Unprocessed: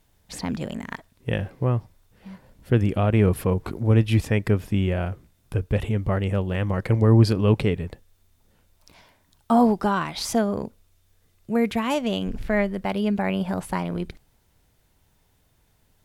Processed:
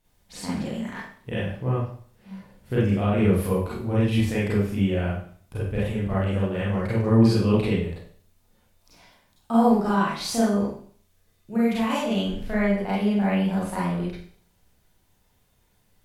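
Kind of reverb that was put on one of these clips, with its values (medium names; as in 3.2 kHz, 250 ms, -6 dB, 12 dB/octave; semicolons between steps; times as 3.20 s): Schroeder reverb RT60 0.51 s, combs from 31 ms, DRR -8.5 dB; trim -9.5 dB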